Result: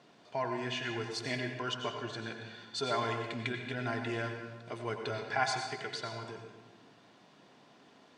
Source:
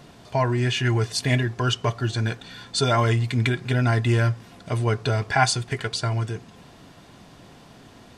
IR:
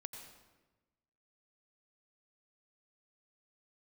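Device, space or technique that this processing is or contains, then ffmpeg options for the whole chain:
supermarket ceiling speaker: -filter_complex "[0:a]highpass=250,lowpass=5900[link_01];[1:a]atrim=start_sample=2205[link_02];[link_01][link_02]afir=irnorm=-1:irlink=0,volume=-6dB"

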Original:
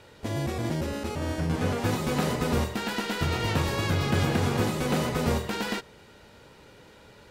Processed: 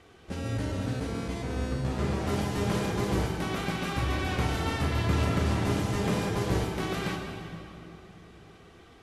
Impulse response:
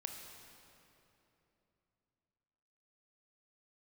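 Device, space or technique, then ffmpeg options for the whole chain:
slowed and reverbed: -filter_complex "[0:a]asetrate=35721,aresample=44100[link_01];[1:a]atrim=start_sample=2205[link_02];[link_01][link_02]afir=irnorm=-1:irlink=0"

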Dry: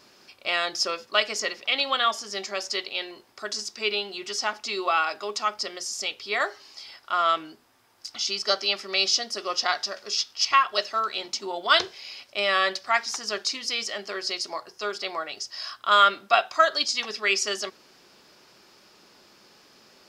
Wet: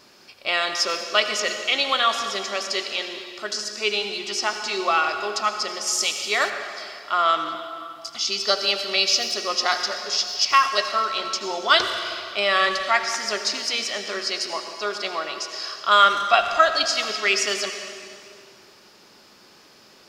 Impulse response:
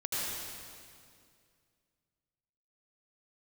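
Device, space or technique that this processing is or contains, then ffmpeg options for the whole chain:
saturated reverb return: -filter_complex "[0:a]asplit=2[link_01][link_02];[1:a]atrim=start_sample=2205[link_03];[link_02][link_03]afir=irnorm=-1:irlink=0,asoftclip=type=tanh:threshold=-12dB,volume=-9.5dB[link_04];[link_01][link_04]amix=inputs=2:normalize=0,asettb=1/sr,asplit=3[link_05][link_06][link_07];[link_05]atrim=end=5.874[link_08];[link_06]atrim=start=5.87:end=6.5,asetpts=PTS-STARTPTS,afade=type=in:duration=0.004:curve=qsin,afade=type=out:start_time=0.626:duration=0.004:curve=qsin,highshelf=frequency=5300:gain=10.5[link_09];[link_07]atrim=start=6.496[link_10];[link_08][link_09]acrossfade=duration=0.004:curve1=hsin:curve2=qsin[link_11];[link_11][link_10]acrossfade=duration=0.004:curve1=qsin:curve2=hsin,volume=1dB"

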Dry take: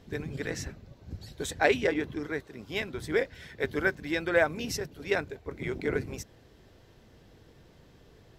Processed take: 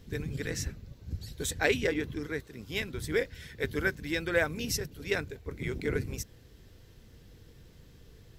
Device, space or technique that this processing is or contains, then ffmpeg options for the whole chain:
smiley-face EQ: -af "lowshelf=frequency=100:gain=7.5,equalizer=frequency=480:width_type=o:width=0.31:gain=5.5,equalizer=frequency=660:width_type=o:width=1.7:gain=-8.5,highshelf=frequency=7900:gain=9"

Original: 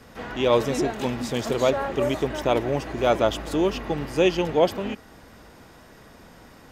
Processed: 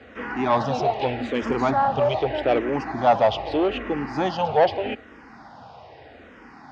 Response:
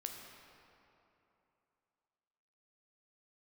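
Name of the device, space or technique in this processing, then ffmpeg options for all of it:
barber-pole phaser into a guitar amplifier: -filter_complex "[0:a]asplit=2[link_01][link_02];[link_02]afreqshift=-0.81[link_03];[link_01][link_03]amix=inputs=2:normalize=1,asoftclip=type=tanh:threshold=-19.5dB,highpass=85,equalizer=frequency=170:width_type=q:width=4:gain=-8,equalizer=frequency=370:width_type=q:width=4:gain=-3,equalizer=frequency=780:width_type=q:width=4:gain=9,equalizer=frequency=3600:width_type=q:width=4:gain=-4,lowpass=frequency=4400:width=0.5412,lowpass=frequency=4400:width=1.3066,asettb=1/sr,asplit=3[link_04][link_05][link_06];[link_04]atrim=end=1.424[link_07];[link_05]atrim=start=1.42:end=2,asetpts=PTS-STARTPTS,afade=type=in:duration=0.004:curve=qsin,afade=type=out:start_time=0.576:duration=0.004:curve=qsin,lowshelf=frequency=120:gain=10[link_08];[link_06]atrim=start=1.996[link_09];[link_07][link_08]acrossfade=duration=0.004:curve1=hsin:curve2=qsin[link_10];[link_10][link_09]acrossfade=duration=0.004:curve1=qsin:curve2=hsin,volume=6dB"

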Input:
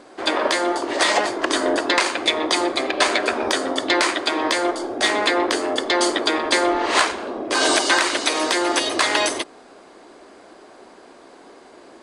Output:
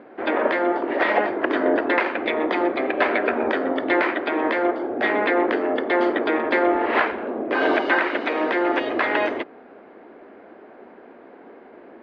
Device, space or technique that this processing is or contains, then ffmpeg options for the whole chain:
bass cabinet: -filter_complex "[0:a]highpass=60,equalizer=frequency=95:width_type=q:width=4:gain=-6,equalizer=frequency=230:width_type=q:width=4:gain=5,equalizer=frequency=460:width_type=q:width=4:gain=3,equalizer=frequency=1100:width_type=q:width=4:gain=-5,lowpass=frequency=2300:width=0.5412,lowpass=frequency=2300:width=1.3066,asettb=1/sr,asplit=3[link_01][link_02][link_03];[link_01]atrim=end=7.894[link_04];[link_02]atrim=start=7.89:end=8.31,asetpts=PTS-STARTPTS,afade=type=in:duration=0.004:curve=qsin,afade=type=out:start_time=0.416:duration=0.004:curve=qsin,highpass=120[link_05];[link_03]atrim=start=8.306[link_06];[link_04][link_05]acrossfade=duration=0.004:curve1=hsin:curve2=qsin[link_07];[link_07][link_06]acrossfade=duration=0.004:curve1=qsin:curve2=hsin"

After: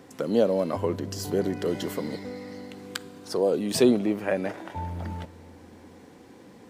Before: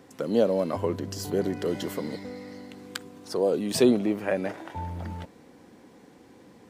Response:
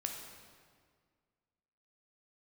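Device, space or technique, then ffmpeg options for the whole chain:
ducked reverb: -filter_complex "[0:a]asplit=3[link_01][link_02][link_03];[1:a]atrim=start_sample=2205[link_04];[link_02][link_04]afir=irnorm=-1:irlink=0[link_05];[link_03]apad=whole_len=295283[link_06];[link_05][link_06]sidechaincompress=threshold=-33dB:ratio=8:attack=16:release=1330,volume=-7dB[link_07];[link_01][link_07]amix=inputs=2:normalize=0"

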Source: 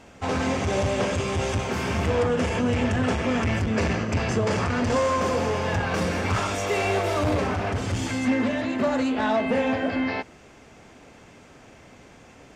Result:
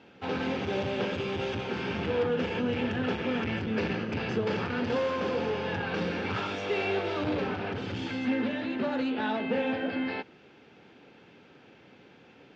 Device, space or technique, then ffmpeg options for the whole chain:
kitchen radio: -af "highpass=170,equalizer=frequency=250:width_type=q:width=4:gain=-3,equalizer=frequency=650:width_type=q:width=4:gain=-10,equalizer=frequency=1100:width_type=q:width=4:gain=-9,equalizer=frequency=2000:width_type=q:width=4:gain=-6,lowpass=frequency=4000:width=0.5412,lowpass=frequency=4000:width=1.3066,volume=-2dB"

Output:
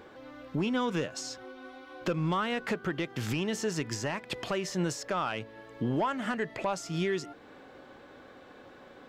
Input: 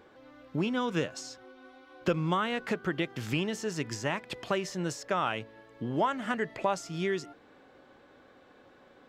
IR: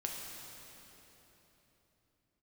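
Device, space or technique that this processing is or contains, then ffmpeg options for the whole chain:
soft clipper into limiter: -af "asoftclip=type=tanh:threshold=-20dB,alimiter=level_in=4dB:limit=-24dB:level=0:latency=1:release=375,volume=-4dB,volume=6dB"

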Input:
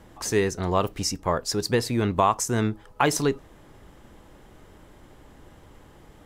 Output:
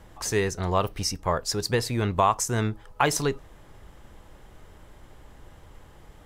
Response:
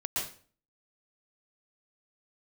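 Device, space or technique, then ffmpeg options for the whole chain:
low shelf boost with a cut just above: -filter_complex "[0:a]lowshelf=frequency=62:gain=5.5,equalizer=frequency=270:width_type=o:width=1.2:gain=-5.5,asettb=1/sr,asplit=3[link_01][link_02][link_03];[link_01]atrim=end=0.784[link_04];[link_02]atrim=start=0.78:end=1.19,asetpts=PTS-STARTPTS,afade=type=in:duration=0.004:curve=qsin,afade=type=out:start_time=0.406:duration=0.004:curve=qsin,bandreject=frequency=7200:width=5.9[link_05];[link_03]atrim=start=1.186[link_06];[link_04][link_05]acrossfade=duration=0.004:curve1=hsin:curve2=qsin[link_07];[link_07][link_06]acrossfade=duration=0.004:curve1=qsin:curve2=hsin"

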